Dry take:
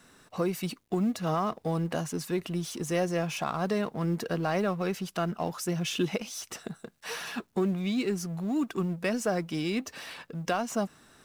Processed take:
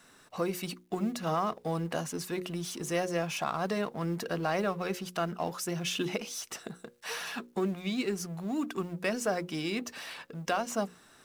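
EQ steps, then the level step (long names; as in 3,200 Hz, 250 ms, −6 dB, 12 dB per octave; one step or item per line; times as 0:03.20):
low-shelf EQ 280 Hz −5.5 dB
mains-hum notches 60/120/180/240/300/360/420/480/540 Hz
0.0 dB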